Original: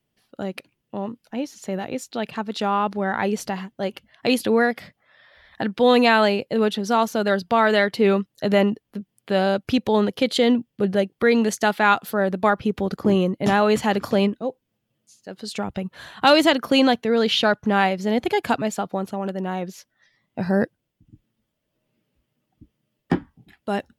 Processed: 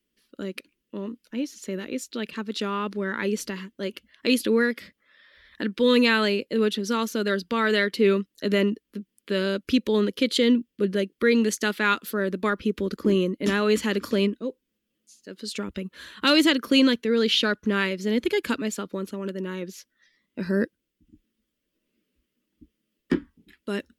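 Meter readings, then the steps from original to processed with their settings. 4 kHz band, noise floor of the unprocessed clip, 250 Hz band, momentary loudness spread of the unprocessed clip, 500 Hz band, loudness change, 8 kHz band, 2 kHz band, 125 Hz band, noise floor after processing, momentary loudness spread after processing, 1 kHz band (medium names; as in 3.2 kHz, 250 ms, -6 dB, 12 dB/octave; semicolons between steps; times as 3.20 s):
-0.5 dB, -77 dBFS, -2.0 dB, 14 LU, -4.0 dB, -3.0 dB, 0.0 dB, -2.5 dB, -4.5 dB, -80 dBFS, 15 LU, -10.0 dB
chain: static phaser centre 310 Hz, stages 4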